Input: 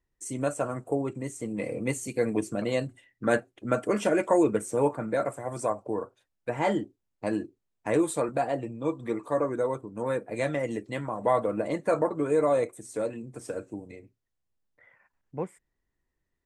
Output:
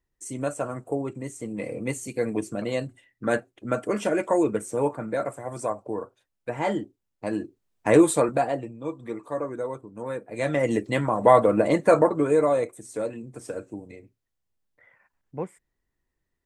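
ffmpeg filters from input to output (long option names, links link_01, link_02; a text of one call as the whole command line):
ffmpeg -i in.wav -af "volume=20dB,afade=type=in:start_time=7.31:duration=0.69:silence=0.375837,afade=type=out:start_time=8:duration=0.73:silence=0.266073,afade=type=in:start_time=10.32:duration=0.42:silence=0.266073,afade=type=out:start_time=11.8:duration=0.77:silence=0.421697" out.wav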